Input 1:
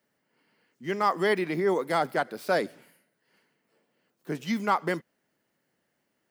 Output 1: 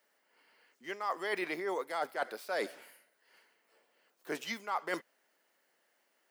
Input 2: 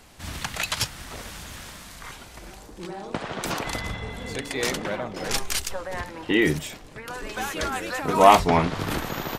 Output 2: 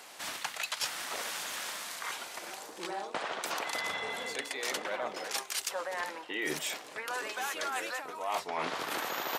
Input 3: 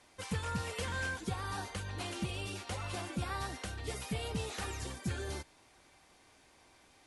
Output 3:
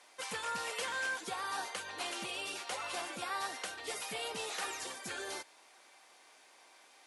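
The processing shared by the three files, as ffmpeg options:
-af "highpass=530,areverse,acompressor=threshold=-35dB:ratio=10,areverse,volume=3.5dB"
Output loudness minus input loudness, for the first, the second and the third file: −9.0, −10.5, +0.5 LU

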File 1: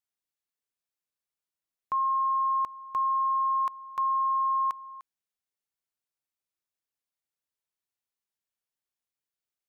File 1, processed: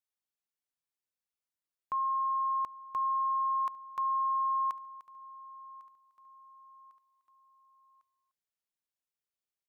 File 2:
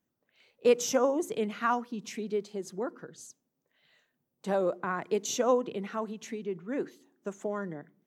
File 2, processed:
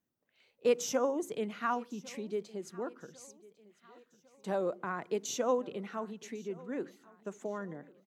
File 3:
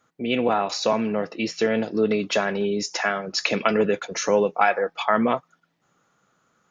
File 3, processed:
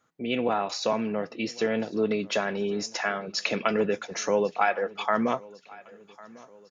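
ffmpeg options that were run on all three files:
-af "aecho=1:1:1101|2202|3303:0.075|0.0367|0.018,volume=-4.5dB"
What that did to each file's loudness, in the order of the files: −4.0, −4.5, −4.5 LU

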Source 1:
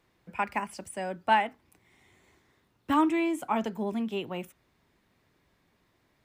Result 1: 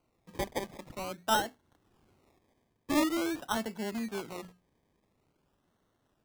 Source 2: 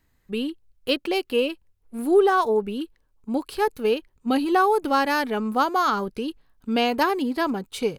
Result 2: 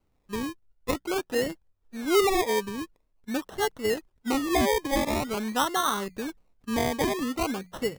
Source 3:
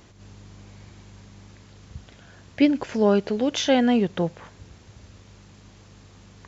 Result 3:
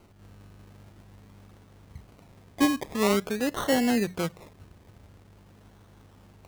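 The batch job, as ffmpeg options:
-af "bandreject=frequency=60:width_type=h:width=6,bandreject=frequency=120:width_type=h:width=6,bandreject=frequency=180:width_type=h:width=6,acrusher=samples=25:mix=1:aa=0.000001:lfo=1:lforange=15:lforate=0.47,volume=-4.5dB"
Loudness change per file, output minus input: −4.0, −4.5, −4.5 LU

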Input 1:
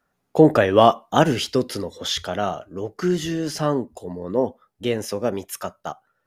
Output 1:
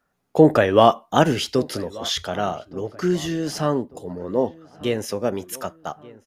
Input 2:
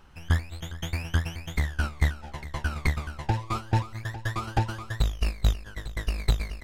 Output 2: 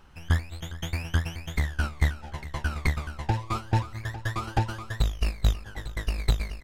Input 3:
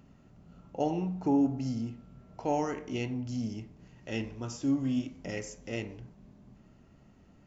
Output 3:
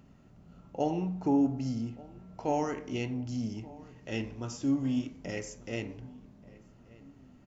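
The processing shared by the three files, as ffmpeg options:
-filter_complex "[0:a]asplit=2[link_01][link_02];[link_02]adelay=1182,lowpass=frequency=2100:poles=1,volume=-21dB,asplit=2[link_03][link_04];[link_04]adelay=1182,lowpass=frequency=2100:poles=1,volume=0.47,asplit=2[link_05][link_06];[link_06]adelay=1182,lowpass=frequency=2100:poles=1,volume=0.47[link_07];[link_01][link_03][link_05][link_07]amix=inputs=4:normalize=0"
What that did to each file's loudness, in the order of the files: 0.0, 0.0, 0.0 LU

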